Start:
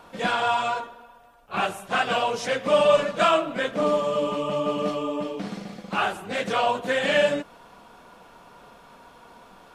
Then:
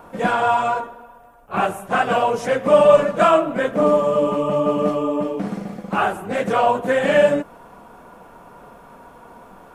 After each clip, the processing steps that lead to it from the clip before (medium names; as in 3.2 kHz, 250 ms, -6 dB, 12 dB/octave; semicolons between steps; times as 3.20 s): peaking EQ 4.1 kHz -14 dB 1.8 oct; trim +7.5 dB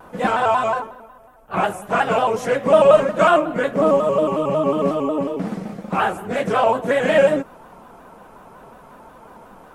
vibrato with a chosen wave square 5.5 Hz, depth 100 cents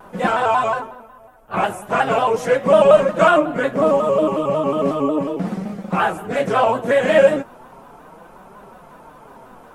flange 0.35 Hz, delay 4.8 ms, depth 4.8 ms, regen +55%; trim +5 dB